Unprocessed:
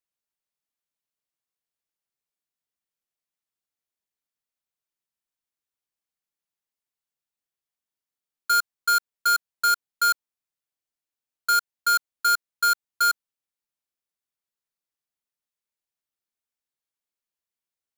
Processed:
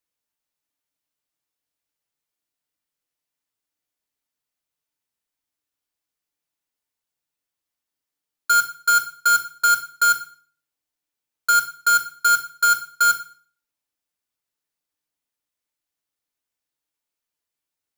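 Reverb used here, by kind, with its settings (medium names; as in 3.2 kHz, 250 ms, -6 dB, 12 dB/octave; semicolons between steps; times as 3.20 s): FDN reverb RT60 0.45 s, low-frequency decay 1.2×, high-frequency decay 0.95×, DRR 4.5 dB; trim +3.5 dB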